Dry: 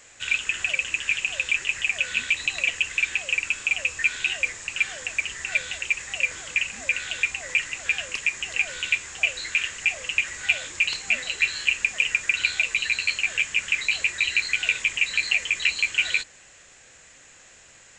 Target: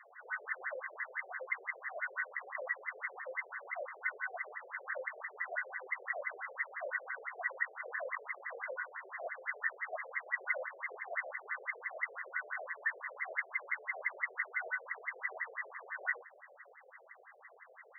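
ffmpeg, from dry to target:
-af "afftfilt=real='re':imag='-im':win_size=2048:overlap=0.75,aexciter=amount=10.7:drive=7.4:freq=2600,afftfilt=real='re*between(b*sr/1024,500*pow(1500/500,0.5+0.5*sin(2*PI*5.9*pts/sr))/1.41,500*pow(1500/500,0.5+0.5*sin(2*PI*5.9*pts/sr))*1.41)':imag='im*between(b*sr/1024,500*pow(1500/500,0.5+0.5*sin(2*PI*5.9*pts/sr))/1.41,500*pow(1500/500,0.5+0.5*sin(2*PI*5.9*pts/sr))*1.41)':win_size=1024:overlap=0.75,volume=2.66"

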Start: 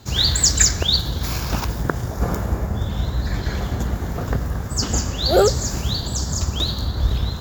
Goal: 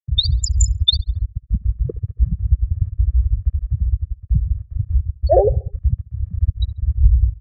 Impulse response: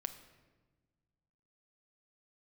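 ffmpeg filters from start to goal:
-filter_complex "[0:a]asplit=2[s0][s1];[1:a]atrim=start_sample=2205,atrim=end_sample=3969,highshelf=f=2900:g=-7.5[s2];[s1][s2]afir=irnorm=-1:irlink=0,volume=0.891[s3];[s0][s3]amix=inputs=2:normalize=0,afftfilt=real='re*gte(hypot(re,im),1.12)':imag='im*gte(hypot(re,im),1.12)':win_size=1024:overlap=0.75,acrossover=split=220[s4][s5];[s5]acompressor=threshold=0.112:ratio=2.5[s6];[s4][s6]amix=inputs=2:normalize=0,lowpass=5500,equalizer=f=1700:w=0.83:g=14,aecho=1:1:1.7:0.79,asplit=2[s7][s8];[s8]adelay=69,lowpass=f=3300:p=1,volume=0.0708,asplit=2[s9][s10];[s10]adelay=69,lowpass=f=3300:p=1,volume=0.54,asplit=2[s11][s12];[s12]adelay=69,lowpass=f=3300:p=1,volume=0.54,asplit=2[s13][s14];[s14]adelay=69,lowpass=f=3300:p=1,volume=0.54[s15];[s7][s9][s11][s13][s15]amix=inputs=5:normalize=0,volume=0.891"

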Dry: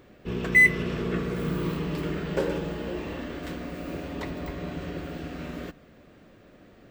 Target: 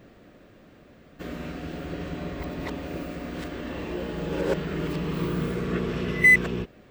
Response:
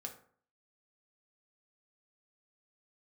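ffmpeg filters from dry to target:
-af "areverse,volume=1.12"

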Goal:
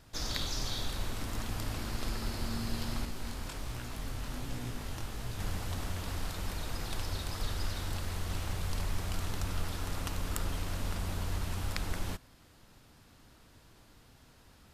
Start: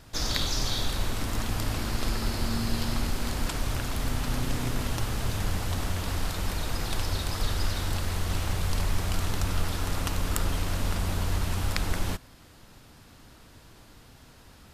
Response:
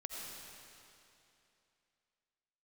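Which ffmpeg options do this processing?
-filter_complex "[0:a]asettb=1/sr,asplit=3[s0][s1][s2];[s0]atrim=end=3.054[s3];[s1]atrim=start=3.05:end=5.39,asetpts=PTS-STARTPTS,afade=t=in:d=0.004:c=qsin,afade=t=out:st=2.336:d=0.004:c=qsin,flanger=delay=16.5:depth=6.9:speed=1.3[s4];[s2]atrim=start=5.386[s5];[s3][s4]acrossfade=d=0.004:c1=hsin:c2=qsin[s6];[s6][s5]acrossfade=d=0.004:c1=qsin:c2=hsin,volume=0.447"

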